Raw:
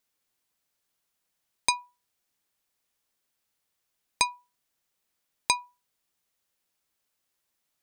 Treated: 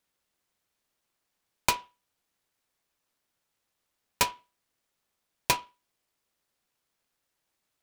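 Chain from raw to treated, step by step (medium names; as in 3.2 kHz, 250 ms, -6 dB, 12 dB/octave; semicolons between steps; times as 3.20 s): delay time shaken by noise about 1.7 kHz, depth 0.07 ms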